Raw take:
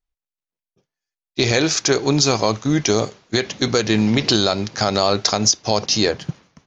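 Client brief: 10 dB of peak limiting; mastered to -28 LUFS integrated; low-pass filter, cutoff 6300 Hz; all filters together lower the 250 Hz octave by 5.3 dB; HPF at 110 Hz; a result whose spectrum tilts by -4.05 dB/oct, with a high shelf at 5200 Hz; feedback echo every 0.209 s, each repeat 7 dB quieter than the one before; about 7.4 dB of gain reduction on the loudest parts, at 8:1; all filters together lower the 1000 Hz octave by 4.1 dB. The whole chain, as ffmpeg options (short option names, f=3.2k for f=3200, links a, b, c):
-af "highpass=110,lowpass=6.3k,equalizer=f=250:t=o:g=-6.5,equalizer=f=1k:t=o:g=-5,highshelf=f=5.2k:g=-8,acompressor=threshold=-23dB:ratio=8,alimiter=limit=-20dB:level=0:latency=1,aecho=1:1:209|418|627|836|1045:0.447|0.201|0.0905|0.0407|0.0183,volume=3dB"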